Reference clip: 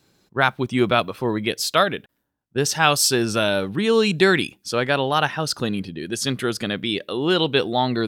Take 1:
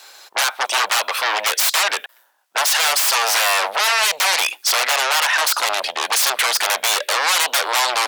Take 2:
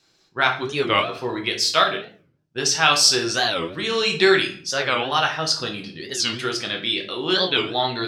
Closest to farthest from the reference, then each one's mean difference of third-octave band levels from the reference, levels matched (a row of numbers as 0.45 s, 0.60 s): 2, 1; 6.5 dB, 19.0 dB